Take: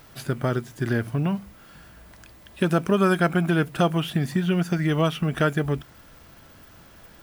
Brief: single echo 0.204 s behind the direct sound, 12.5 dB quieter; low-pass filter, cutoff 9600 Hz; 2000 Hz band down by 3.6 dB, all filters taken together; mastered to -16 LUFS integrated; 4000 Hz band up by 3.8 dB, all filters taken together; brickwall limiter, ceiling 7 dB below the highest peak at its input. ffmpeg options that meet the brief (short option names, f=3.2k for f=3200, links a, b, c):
-af "lowpass=9.6k,equalizer=f=2k:t=o:g=-7,equalizer=f=4k:t=o:g=8.5,alimiter=limit=-15.5dB:level=0:latency=1,aecho=1:1:204:0.237,volume=10dB"